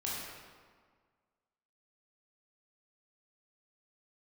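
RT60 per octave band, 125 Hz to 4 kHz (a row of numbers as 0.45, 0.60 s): 1.7, 1.8, 1.7, 1.7, 1.4, 1.1 s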